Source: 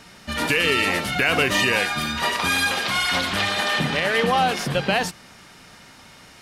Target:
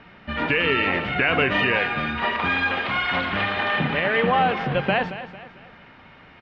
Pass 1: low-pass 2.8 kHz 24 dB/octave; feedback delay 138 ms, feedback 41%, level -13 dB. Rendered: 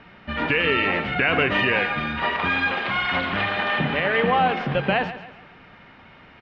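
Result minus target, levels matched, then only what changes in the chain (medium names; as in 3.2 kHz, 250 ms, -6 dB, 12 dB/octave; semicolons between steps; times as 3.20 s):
echo 87 ms early
change: feedback delay 225 ms, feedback 41%, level -13 dB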